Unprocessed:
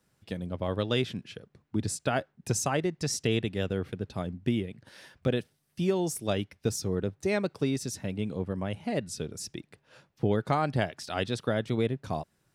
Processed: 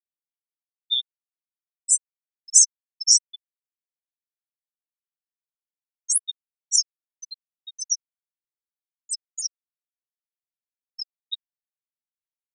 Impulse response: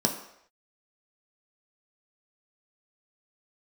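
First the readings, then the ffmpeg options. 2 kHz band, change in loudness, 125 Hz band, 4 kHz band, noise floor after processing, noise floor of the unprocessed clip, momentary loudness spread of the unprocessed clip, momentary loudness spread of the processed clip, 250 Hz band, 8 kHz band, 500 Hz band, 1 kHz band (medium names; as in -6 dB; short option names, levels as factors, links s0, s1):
under -40 dB, +10.5 dB, under -40 dB, +11.0 dB, under -85 dBFS, -74 dBFS, 9 LU, 20 LU, under -40 dB, +17.5 dB, under -40 dB, under -40 dB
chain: -af "acontrast=64,aexciter=amount=14.6:drive=8.8:freq=3000,afftfilt=real='re*gte(hypot(re,im),2.51)':imag='im*gte(hypot(re,im),2.51)':win_size=1024:overlap=0.75,volume=0.2"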